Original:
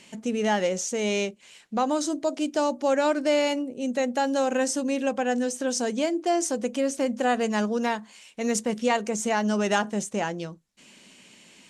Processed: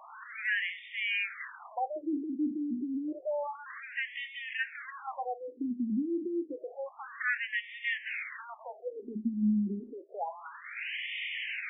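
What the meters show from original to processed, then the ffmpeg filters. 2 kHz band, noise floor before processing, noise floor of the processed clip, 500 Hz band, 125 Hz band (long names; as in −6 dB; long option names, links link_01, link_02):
−0.5 dB, −54 dBFS, −52 dBFS, −15.5 dB, can't be measured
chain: -af "aeval=exprs='val(0)+0.5*0.0473*sgn(val(0))':channel_layout=same,equalizer=frequency=125:width_type=o:width=1:gain=10,equalizer=frequency=500:width_type=o:width=1:gain=-11,equalizer=frequency=2000:width_type=o:width=1:gain=8,equalizer=frequency=4000:width_type=o:width=1:gain=-6,afftfilt=real='re*between(b*sr/1024,250*pow(2600/250,0.5+0.5*sin(2*PI*0.29*pts/sr))/1.41,250*pow(2600/250,0.5+0.5*sin(2*PI*0.29*pts/sr))*1.41)':imag='im*between(b*sr/1024,250*pow(2600/250,0.5+0.5*sin(2*PI*0.29*pts/sr))/1.41,250*pow(2600/250,0.5+0.5*sin(2*PI*0.29*pts/sr))*1.41)':win_size=1024:overlap=0.75,volume=-3.5dB"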